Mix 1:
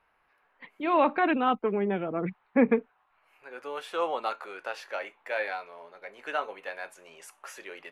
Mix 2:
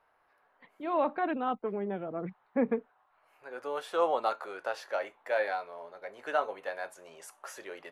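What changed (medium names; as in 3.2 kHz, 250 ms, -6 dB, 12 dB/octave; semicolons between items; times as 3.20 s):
first voice -7.5 dB; master: add fifteen-band graphic EQ 100 Hz +6 dB, 630 Hz +4 dB, 2.5 kHz -7 dB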